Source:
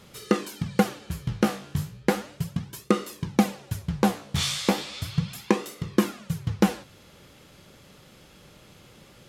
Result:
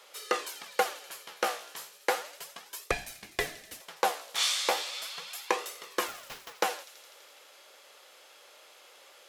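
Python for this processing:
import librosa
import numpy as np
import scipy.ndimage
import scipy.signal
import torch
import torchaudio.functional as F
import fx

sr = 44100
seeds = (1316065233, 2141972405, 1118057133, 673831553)

y = scipy.signal.sosfilt(scipy.signal.butter(4, 520.0, 'highpass', fs=sr, output='sos'), x)
y = fx.ring_mod(y, sr, carrier_hz=1200.0, at=(2.91, 3.81))
y = fx.sample_hold(y, sr, seeds[0], rate_hz=8700.0, jitter_pct=20, at=(6.07, 6.52), fade=0.02)
y = fx.echo_wet_highpass(y, sr, ms=83, feedback_pct=79, hz=3700.0, wet_db=-14)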